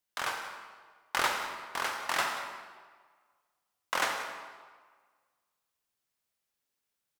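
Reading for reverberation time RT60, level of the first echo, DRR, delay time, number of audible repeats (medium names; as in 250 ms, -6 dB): 1.6 s, -16.0 dB, 3.0 dB, 181 ms, 1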